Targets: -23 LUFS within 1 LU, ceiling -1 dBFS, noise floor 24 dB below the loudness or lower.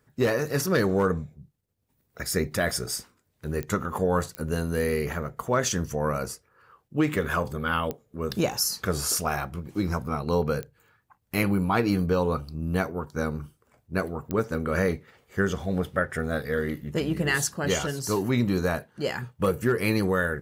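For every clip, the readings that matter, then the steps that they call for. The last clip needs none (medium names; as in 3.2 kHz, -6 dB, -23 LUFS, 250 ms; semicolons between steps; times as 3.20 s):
clicks found 5; loudness -27.5 LUFS; peak level -10.0 dBFS; loudness target -23.0 LUFS
-> de-click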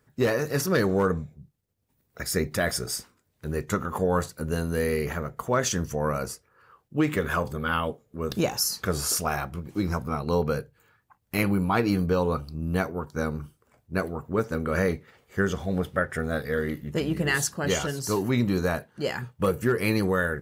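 clicks found 0; loudness -27.5 LUFS; peak level -10.0 dBFS; loudness target -23.0 LUFS
-> trim +4.5 dB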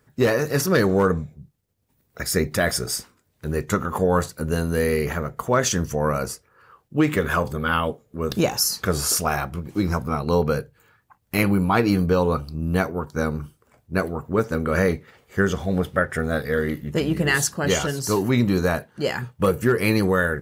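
loudness -23.0 LUFS; peak level -5.5 dBFS; noise floor -67 dBFS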